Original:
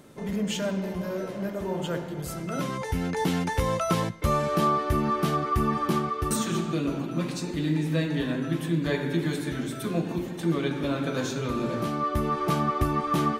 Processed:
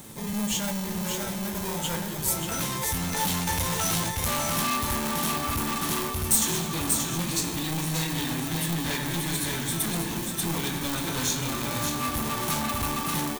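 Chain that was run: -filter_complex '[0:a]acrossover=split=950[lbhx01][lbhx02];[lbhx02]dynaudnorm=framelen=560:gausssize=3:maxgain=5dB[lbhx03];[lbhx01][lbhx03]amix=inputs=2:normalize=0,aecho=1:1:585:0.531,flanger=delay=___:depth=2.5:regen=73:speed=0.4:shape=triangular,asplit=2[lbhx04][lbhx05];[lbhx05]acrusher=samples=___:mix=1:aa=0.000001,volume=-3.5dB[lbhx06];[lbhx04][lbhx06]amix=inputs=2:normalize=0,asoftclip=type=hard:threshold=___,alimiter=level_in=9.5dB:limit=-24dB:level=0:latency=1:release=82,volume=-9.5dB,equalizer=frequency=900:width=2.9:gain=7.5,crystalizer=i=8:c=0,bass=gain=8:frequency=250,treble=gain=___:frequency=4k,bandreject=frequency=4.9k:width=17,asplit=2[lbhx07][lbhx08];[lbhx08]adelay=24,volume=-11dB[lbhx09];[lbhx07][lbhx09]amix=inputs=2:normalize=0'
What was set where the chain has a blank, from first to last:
8.8, 31, -27.5dB, 0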